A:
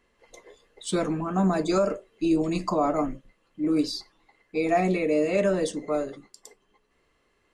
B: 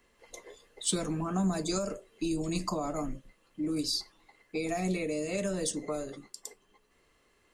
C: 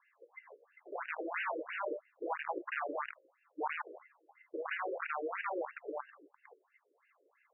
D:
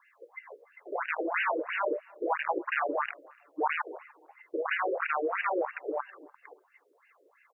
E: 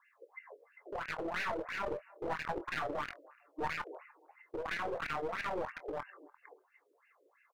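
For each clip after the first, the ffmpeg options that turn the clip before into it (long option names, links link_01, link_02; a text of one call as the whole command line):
ffmpeg -i in.wav -filter_complex "[0:a]highshelf=frequency=5800:gain=8.5,acrossover=split=160|4000[link_01][link_02][link_03];[link_02]acompressor=threshold=-32dB:ratio=6[link_04];[link_01][link_04][link_03]amix=inputs=3:normalize=0" out.wav
ffmpeg -i in.wav -af "aeval=exprs='(mod(23.7*val(0)+1,2)-1)/23.7':channel_layout=same,afftfilt=real='re*between(b*sr/1024,410*pow(2100/410,0.5+0.5*sin(2*PI*3*pts/sr))/1.41,410*pow(2100/410,0.5+0.5*sin(2*PI*3*pts/sr))*1.41)':imag='im*between(b*sr/1024,410*pow(2100/410,0.5+0.5*sin(2*PI*3*pts/sr))/1.41,410*pow(2100/410,0.5+0.5*sin(2*PI*3*pts/sr))*1.41)':win_size=1024:overlap=0.75,volume=2.5dB" out.wav
ffmpeg -i in.wav -filter_complex "[0:a]asplit=2[link_01][link_02];[link_02]adelay=294,lowpass=frequency=2500:poles=1,volume=-23.5dB,asplit=2[link_03][link_04];[link_04]adelay=294,lowpass=frequency=2500:poles=1,volume=0.29[link_05];[link_01][link_03][link_05]amix=inputs=3:normalize=0,volume=8dB" out.wav
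ffmpeg -i in.wav -filter_complex "[0:a]aeval=exprs='clip(val(0),-1,0.0224)':channel_layout=same,asplit=2[link_01][link_02];[link_02]adelay=24,volume=-13dB[link_03];[link_01][link_03]amix=inputs=2:normalize=0,volume=-5.5dB" out.wav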